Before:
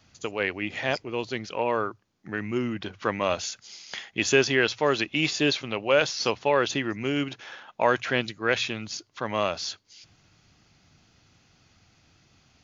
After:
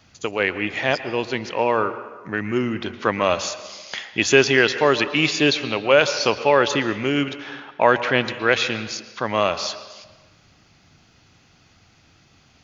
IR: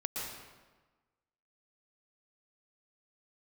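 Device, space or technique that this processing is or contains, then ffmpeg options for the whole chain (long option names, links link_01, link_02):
filtered reverb send: -filter_complex "[0:a]asettb=1/sr,asplit=3[link_01][link_02][link_03];[link_01]atrim=end=7.374[link_04];[link_02]atrim=start=7.37:end=8.25,asetpts=PTS-STARTPTS,afade=type=in:duration=0.004:curve=qsin,afade=type=out:start_time=0.876:duration=0.004:curve=qsin,lowpass=5200[link_05];[link_03]atrim=start=8.246[link_06];[link_04][link_05]acrossfade=duration=0.004:curve1=hsin:curve2=qsin[link_07];[link_07][link_06]acrossfade=duration=0.004:curve1=qsin:curve2=hsin,asplit=2[link_08][link_09];[link_09]highpass=frequency=350:poles=1,lowpass=4600[link_10];[1:a]atrim=start_sample=2205[link_11];[link_10][link_11]afir=irnorm=-1:irlink=0,volume=-10.5dB[link_12];[link_08][link_12]amix=inputs=2:normalize=0,volume=4.5dB"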